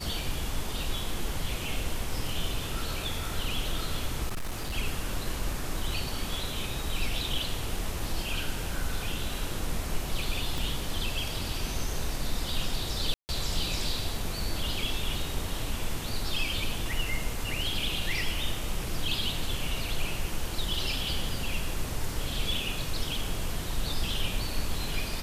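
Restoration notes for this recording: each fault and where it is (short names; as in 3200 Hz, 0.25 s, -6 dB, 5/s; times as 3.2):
4.28–4.75 clipped -28.5 dBFS
10.58 pop
13.14–13.29 gap 0.149 s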